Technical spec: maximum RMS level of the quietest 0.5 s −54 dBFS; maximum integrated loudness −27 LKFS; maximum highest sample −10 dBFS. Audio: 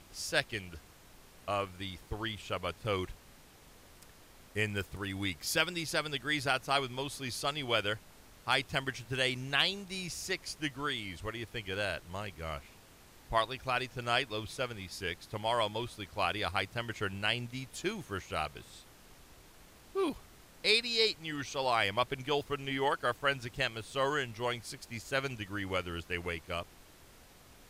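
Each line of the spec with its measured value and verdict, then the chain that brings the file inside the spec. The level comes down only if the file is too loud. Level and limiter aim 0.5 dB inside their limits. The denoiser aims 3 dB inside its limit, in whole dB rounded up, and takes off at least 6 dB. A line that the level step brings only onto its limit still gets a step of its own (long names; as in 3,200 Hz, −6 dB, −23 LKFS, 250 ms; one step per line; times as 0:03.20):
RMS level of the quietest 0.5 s −57 dBFS: in spec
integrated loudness −34.0 LKFS: in spec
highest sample −13.5 dBFS: in spec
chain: no processing needed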